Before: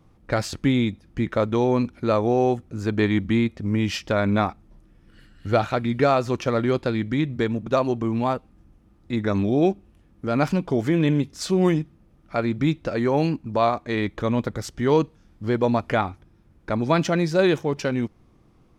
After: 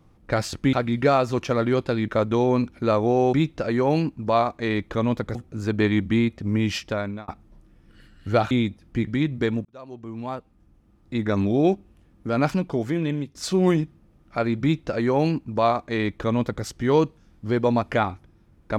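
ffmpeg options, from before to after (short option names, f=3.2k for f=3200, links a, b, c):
-filter_complex "[0:a]asplit=10[a][b][c][d][e][f][g][h][i][j];[a]atrim=end=0.732[k];[b]atrim=start=5.698:end=7.052[l];[c]atrim=start=1.288:end=2.542[m];[d]atrim=start=12.598:end=14.622[n];[e]atrim=start=2.538:end=4.47,asetpts=PTS-STARTPTS,afade=t=out:st=1.402:d=0.53[o];[f]atrim=start=4.47:end=5.702,asetpts=PTS-STARTPTS,afade=t=in:d=0.004:c=hsin[p];[g]atrim=start=0.728:end=1.292[q];[h]atrim=start=7.048:end=7.63,asetpts=PTS-STARTPTS,afade=t=out:st=0.578:d=0.004:c=hsin[r];[i]atrim=start=7.63:end=11.33,asetpts=PTS-STARTPTS,afade=t=in:d=1.63,afade=t=out:st=2.74:d=0.96:silence=0.354813[s];[j]atrim=start=11.33,asetpts=PTS-STARTPTS,afade=t=in:d=0.004:c=hsin:silence=0.354813[t];[k][l]acrossfade=d=0.004:c1=hsin:c2=hsin[u];[u][m]acrossfade=d=0.004:c1=hsin:c2=hsin[v];[v][n]acrossfade=d=0.004:c1=hsin:c2=hsin[w];[o][p]concat=n=2:v=0:a=1[x];[w][x]acrossfade=d=0.004:c1=hsin:c2=hsin[y];[y][q]acrossfade=d=0.004:c1=hsin:c2=hsin[z];[r][s][t]concat=n=3:v=0:a=1[aa];[z][aa]acrossfade=d=0.004:c1=hsin:c2=hsin"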